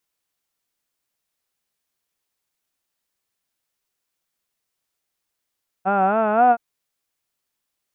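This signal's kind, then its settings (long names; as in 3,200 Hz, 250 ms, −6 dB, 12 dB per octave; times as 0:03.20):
vowel from formants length 0.72 s, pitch 185 Hz, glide +5 semitones, vibrato 3.8 Hz, vibrato depth 1 semitone, F1 730 Hz, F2 1,400 Hz, F3 2,600 Hz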